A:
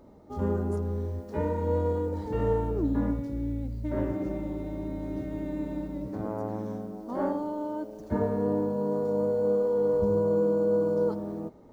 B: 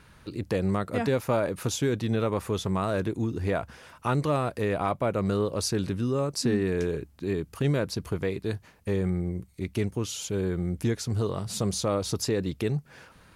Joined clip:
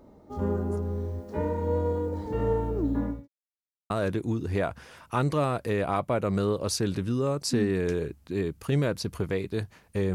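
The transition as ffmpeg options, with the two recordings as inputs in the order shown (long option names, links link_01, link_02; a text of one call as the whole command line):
ffmpeg -i cue0.wav -i cue1.wav -filter_complex "[0:a]apad=whole_dur=10.14,atrim=end=10.14,asplit=2[link_01][link_02];[link_01]atrim=end=3.28,asetpts=PTS-STARTPTS,afade=type=out:start_time=2.87:duration=0.41:curve=qsin[link_03];[link_02]atrim=start=3.28:end=3.9,asetpts=PTS-STARTPTS,volume=0[link_04];[1:a]atrim=start=2.82:end=9.06,asetpts=PTS-STARTPTS,afade=type=in:duration=0.004:curve=hsin[link_05];[link_03][link_04][link_05]concat=n=3:v=0:a=1" out.wav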